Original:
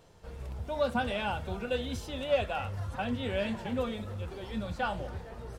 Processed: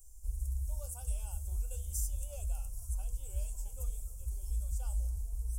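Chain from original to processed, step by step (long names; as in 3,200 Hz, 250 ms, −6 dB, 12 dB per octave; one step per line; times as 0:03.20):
inverse Chebyshev band-stop filter 100–4,200 Hz, stop band 40 dB
level +16 dB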